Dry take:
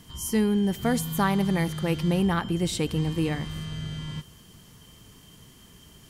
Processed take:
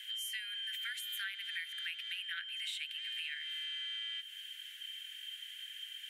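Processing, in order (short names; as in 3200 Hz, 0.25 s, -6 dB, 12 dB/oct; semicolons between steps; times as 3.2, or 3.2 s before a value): steep high-pass 1500 Hz 96 dB/oct; resonant high shelf 4000 Hz -8 dB, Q 3; compressor 6:1, threshold -45 dBFS, peak gain reduction 16.5 dB; gain +6 dB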